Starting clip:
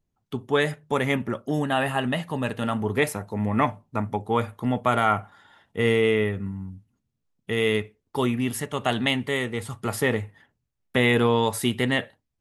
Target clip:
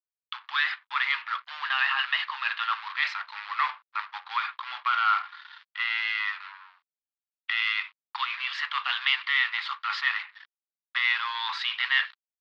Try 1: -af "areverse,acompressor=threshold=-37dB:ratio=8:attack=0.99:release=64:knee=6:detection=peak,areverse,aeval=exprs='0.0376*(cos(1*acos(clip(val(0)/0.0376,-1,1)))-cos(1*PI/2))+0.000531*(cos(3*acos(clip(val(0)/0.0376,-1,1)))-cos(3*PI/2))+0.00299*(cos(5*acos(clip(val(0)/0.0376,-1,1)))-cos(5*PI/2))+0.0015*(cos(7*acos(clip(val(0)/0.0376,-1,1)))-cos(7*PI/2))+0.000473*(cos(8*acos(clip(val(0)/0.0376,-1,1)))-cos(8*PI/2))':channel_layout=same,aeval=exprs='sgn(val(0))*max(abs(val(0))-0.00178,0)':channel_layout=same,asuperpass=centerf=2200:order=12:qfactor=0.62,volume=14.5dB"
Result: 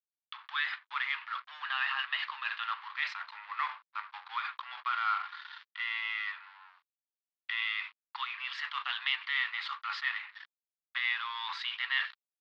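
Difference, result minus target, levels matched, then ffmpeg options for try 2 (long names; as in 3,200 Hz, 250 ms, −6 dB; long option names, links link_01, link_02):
downward compressor: peak gain reduction +8 dB
-af "areverse,acompressor=threshold=-28dB:ratio=8:attack=0.99:release=64:knee=6:detection=peak,areverse,aeval=exprs='0.0376*(cos(1*acos(clip(val(0)/0.0376,-1,1)))-cos(1*PI/2))+0.000531*(cos(3*acos(clip(val(0)/0.0376,-1,1)))-cos(3*PI/2))+0.00299*(cos(5*acos(clip(val(0)/0.0376,-1,1)))-cos(5*PI/2))+0.0015*(cos(7*acos(clip(val(0)/0.0376,-1,1)))-cos(7*PI/2))+0.000473*(cos(8*acos(clip(val(0)/0.0376,-1,1)))-cos(8*PI/2))':channel_layout=same,aeval=exprs='sgn(val(0))*max(abs(val(0))-0.00178,0)':channel_layout=same,asuperpass=centerf=2200:order=12:qfactor=0.62,volume=14.5dB"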